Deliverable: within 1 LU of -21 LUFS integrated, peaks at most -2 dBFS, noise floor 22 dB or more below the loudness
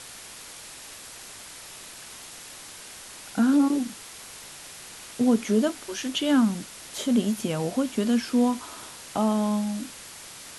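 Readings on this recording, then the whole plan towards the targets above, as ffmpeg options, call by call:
noise floor -44 dBFS; noise floor target -47 dBFS; loudness -25.0 LUFS; peak level -10.5 dBFS; loudness target -21.0 LUFS
-> -af "afftdn=nr=6:nf=-44"
-af "volume=1.58"

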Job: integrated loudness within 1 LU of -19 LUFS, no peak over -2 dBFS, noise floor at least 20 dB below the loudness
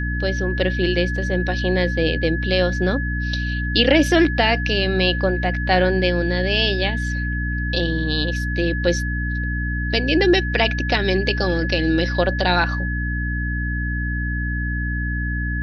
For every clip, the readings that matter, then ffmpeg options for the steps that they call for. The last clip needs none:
hum 60 Hz; highest harmonic 300 Hz; hum level -21 dBFS; steady tone 1.7 kHz; tone level -27 dBFS; loudness -20.5 LUFS; peak level -2.0 dBFS; loudness target -19.0 LUFS
-> -af "bandreject=f=60:t=h:w=6,bandreject=f=120:t=h:w=6,bandreject=f=180:t=h:w=6,bandreject=f=240:t=h:w=6,bandreject=f=300:t=h:w=6"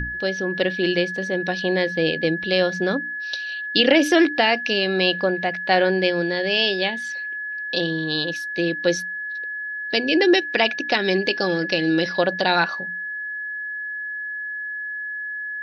hum not found; steady tone 1.7 kHz; tone level -27 dBFS
-> -af "bandreject=f=1700:w=30"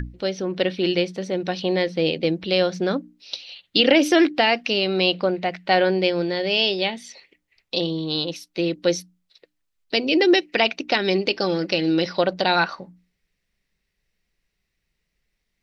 steady tone not found; loudness -21.5 LUFS; peak level -2.5 dBFS; loudness target -19.0 LUFS
-> -af "volume=1.33,alimiter=limit=0.794:level=0:latency=1"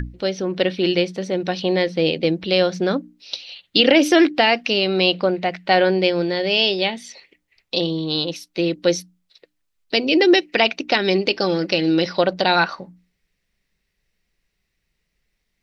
loudness -19.0 LUFS; peak level -2.0 dBFS; noise floor -74 dBFS

